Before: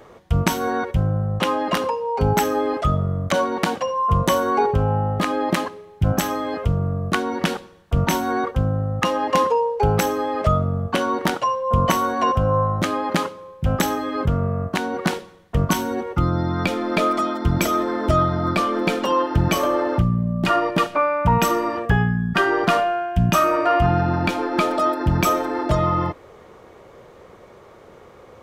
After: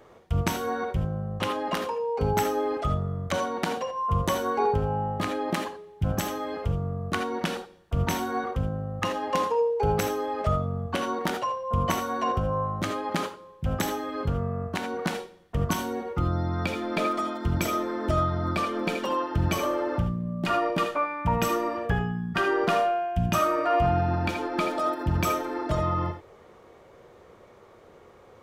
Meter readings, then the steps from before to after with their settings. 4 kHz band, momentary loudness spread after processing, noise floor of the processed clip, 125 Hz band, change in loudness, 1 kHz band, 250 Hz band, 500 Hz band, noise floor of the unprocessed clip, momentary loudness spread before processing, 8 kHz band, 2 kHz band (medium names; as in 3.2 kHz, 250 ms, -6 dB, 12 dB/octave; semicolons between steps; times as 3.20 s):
-6.5 dB, 6 LU, -53 dBFS, -7.0 dB, -6.5 dB, -6.5 dB, -7.5 dB, -6.0 dB, -46 dBFS, 5 LU, -6.5 dB, -7.0 dB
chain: gated-style reverb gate 100 ms rising, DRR 6 dB; trim -7.5 dB